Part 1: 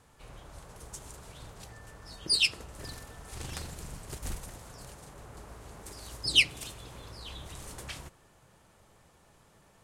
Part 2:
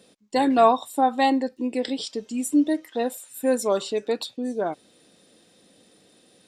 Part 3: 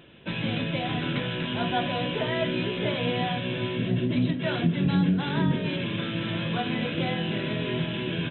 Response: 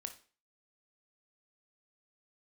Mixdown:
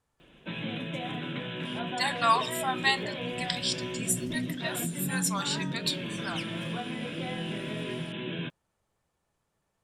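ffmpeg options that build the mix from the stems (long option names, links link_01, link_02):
-filter_complex "[0:a]volume=-17dB[link_01];[1:a]highpass=frequency=1200:width=0.5412,highpass=frequency=1200:width=1.3066,adelay=1650,volume=2dB,asplit=2[link_02][link_03];[link_03]volume=-9.5dB[link_04];[2:a]highpass=frequency=130:width=0.5412,highpass=frequency=130:width=1.3066,alimiter=limit=-19.5dB:level=0:latency=1:release=249,adelay=200,volume=-5dB[link_05];[3:a]atrim=start_sample=2205[link_06];[link_04][link_06]afir=irnorm=-1:irlink=0[link_07];[link_01][link_02][link_05][link_07]amix=inputs=4:normalize=0"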